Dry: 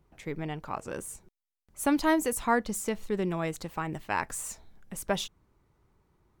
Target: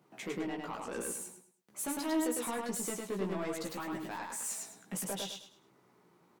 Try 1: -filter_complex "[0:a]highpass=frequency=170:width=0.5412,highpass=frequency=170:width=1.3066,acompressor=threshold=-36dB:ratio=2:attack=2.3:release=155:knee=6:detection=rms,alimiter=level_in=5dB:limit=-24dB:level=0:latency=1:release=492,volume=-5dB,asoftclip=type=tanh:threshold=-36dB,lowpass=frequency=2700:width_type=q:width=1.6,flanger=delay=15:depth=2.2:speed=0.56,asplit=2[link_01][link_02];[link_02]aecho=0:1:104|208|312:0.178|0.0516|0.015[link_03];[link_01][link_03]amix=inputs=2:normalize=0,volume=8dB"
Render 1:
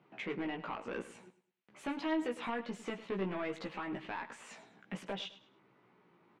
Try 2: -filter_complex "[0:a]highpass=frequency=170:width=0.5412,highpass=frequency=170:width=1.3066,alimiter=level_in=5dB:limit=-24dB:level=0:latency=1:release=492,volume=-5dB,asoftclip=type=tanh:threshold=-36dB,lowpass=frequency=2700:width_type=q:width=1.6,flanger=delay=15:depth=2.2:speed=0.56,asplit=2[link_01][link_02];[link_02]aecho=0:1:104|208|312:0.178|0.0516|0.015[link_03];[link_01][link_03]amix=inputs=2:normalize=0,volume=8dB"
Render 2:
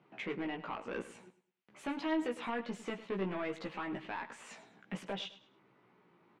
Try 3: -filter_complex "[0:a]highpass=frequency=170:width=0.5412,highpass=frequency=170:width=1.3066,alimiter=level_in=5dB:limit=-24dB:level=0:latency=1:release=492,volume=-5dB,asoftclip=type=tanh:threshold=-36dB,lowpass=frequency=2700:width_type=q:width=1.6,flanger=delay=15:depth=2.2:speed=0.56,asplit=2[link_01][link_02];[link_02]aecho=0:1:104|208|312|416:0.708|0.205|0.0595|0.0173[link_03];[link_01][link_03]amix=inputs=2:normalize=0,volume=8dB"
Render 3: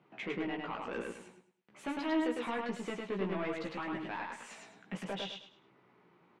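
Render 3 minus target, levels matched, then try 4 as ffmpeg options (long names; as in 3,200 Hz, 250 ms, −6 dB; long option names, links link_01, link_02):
2,000 Hz band +4.0 dB
-filter_complex "[0:a]highpass=frequency=170:width=0.5412,highpass=frequency=170:width=1.3066,alimiter=level_in=5dB:limit=-24dB:level=0:latency=1:release=492,volume=-5dB,asoftclip=type=tanh:threshold=-36dB,flanger=delay=15:depth=2.2:speed=0.56,asplit=2[link_01][link_02];[link_02]aecho=0:1:104|208|312|416:0.708|0.205|0.0595|0.0173[link_03];[link_01][link_03]amix=inputs=2:normalize=0,volume=8dB"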